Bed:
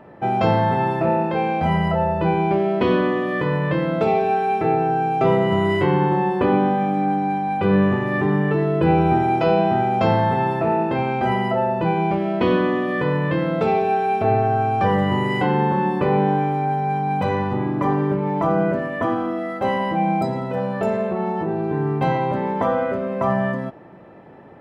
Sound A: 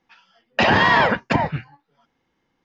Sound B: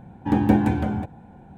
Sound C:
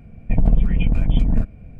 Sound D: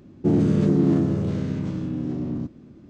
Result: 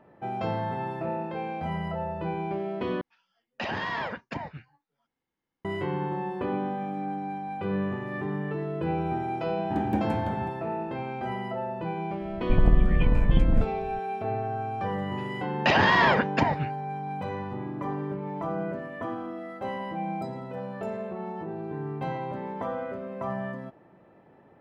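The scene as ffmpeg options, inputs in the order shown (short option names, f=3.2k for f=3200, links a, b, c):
-filter_complex "[1:a]asplit=2[a][b];[0:a]volume=-12dB,asplit=2[c][d];[c]atrim=end=3.014[e];[a]atrim=end=2.64,asetpts=PTS-STARTPTS,volume=-16dB[f];[d]atrim=start=5.646[g];[2:a]atrim=end=1.57,asetpts=PTS-STARTPTS,volume=-10dB,afade=t=in:d=0.004:c=hsin,afade=t=out:st=1.566:d=0.004:c=hsin,adelay=9440[h];[3:a]atrim=end=1.79,asetpts=PTS-STARTPTS,volume=-4dB,afade=t=in:d=0.004:c=hsin,afade=t=out:st=1.786:d=0.004:c=hsin,adelay=538020S[i];[b]atrim=end=2.64,asetpts=PTS-STARTPTS,volume=-5dB,afade=t=in:d=0.004:c=hsin,afade=t=out:st=2.636:d=0.004:c=hsin,adelay=15070[j];[e][f]acrossfade=d=0.004:c1=hsin:c2=hsin[k];[k][g]acrossfade=d=0.004:c1=hsin:c2=hsin[l];[l][h][i][j]amix=inputs=4:normalize=0"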